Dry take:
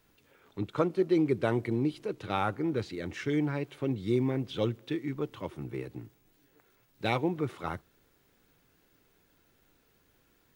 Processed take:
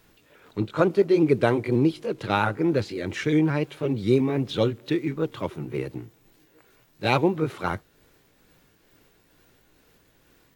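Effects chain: repeated pitch sweeps +1.5 st, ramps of 0.175 s; gain +8.5 dB

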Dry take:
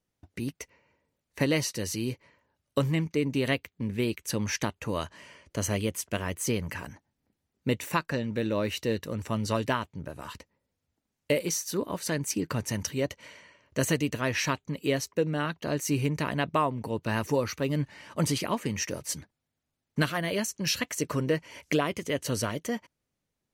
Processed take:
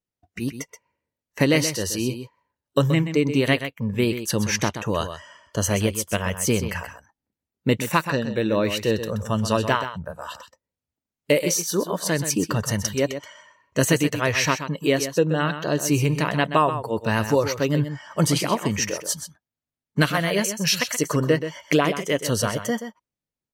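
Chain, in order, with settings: spectral noise reduction 16 dB; on a send: echo 0.128 s -10 dB; on the sum: gain +7 dB

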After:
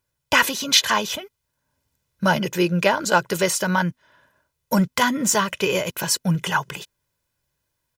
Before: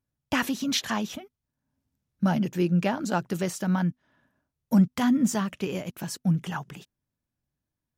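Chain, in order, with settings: low shelf 440 Hz -11 dB; comb 2 ms, depth 56%; in parallel at -2 dB: vocal rider 0.5 s; on the sum: gain +7 dB

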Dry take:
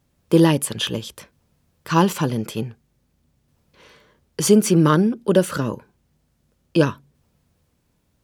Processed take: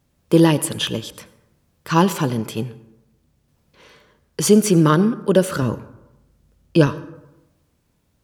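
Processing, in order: 5.62–6.87 low shelf 110 Hz +10.5 dB; on a send: reverb RT60 0.95 s, pre-delay 73 ms, DRR 16 dB; on the sum: gain +1 dB

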